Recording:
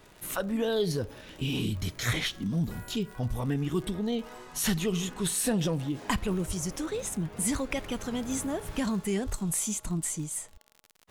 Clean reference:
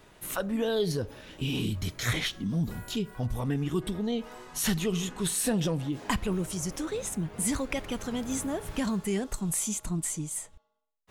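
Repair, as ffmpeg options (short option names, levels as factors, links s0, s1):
-filter_complex "[0:a]adeclick=t=4,asplit=3[s0][s1][s2];[s0]afade=t=out:st=6.47:d=0.02[s3];[s1]highpass=f=140:w=0.5412,highpass=f=140:w=1.3066,afade=t=in:st=6.47:d=0.02,afade=t=out:st=6.59:d=0.02[s4];[s2]afade=t=in:st=6.59:d=0.02[s5];[s3][s4][s5]amix=inputs=3:normalize=0,asplit=3[s6][s7][s8];[s6]afade=t=out:st=9.25:d=0.02[s9];[s7]highpass=f=140:w=0.5412,highpass=f=140:w=1.3066,afade=t=in:st=9.25:d=0.02,afade=t=out:st=9.37:d=0.02[s10];[s8]afade=t=in:st=9.37:d=0.02[s11];[s9][s10][s11]amix=inputs=3:normalize=0"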